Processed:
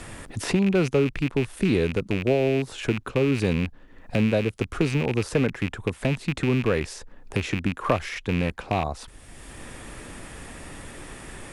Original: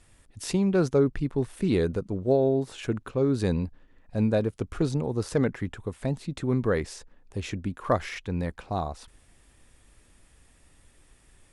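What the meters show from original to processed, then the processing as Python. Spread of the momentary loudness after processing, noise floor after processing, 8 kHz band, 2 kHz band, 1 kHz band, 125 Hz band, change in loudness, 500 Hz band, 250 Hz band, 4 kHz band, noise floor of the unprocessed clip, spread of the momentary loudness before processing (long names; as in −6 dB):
18 LU, −48 dBFS, +3.5 dB, +8.5 dB, +3.0 dB, +3.0 dB, +2.5 dB, +1.5 dB, +2.5 dB, +7.0 dB, −60 dBFS, 11 LU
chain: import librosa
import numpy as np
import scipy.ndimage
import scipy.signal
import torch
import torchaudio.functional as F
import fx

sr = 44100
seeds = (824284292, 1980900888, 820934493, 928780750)

y = fx.rattle_buzz(x, sr, strikes_db=-33.0, level_db=-24.0)
y = fx.band_squash(y, sr, depth_pct=70)
y = y * 10.0 ** (2.5 / 20.0)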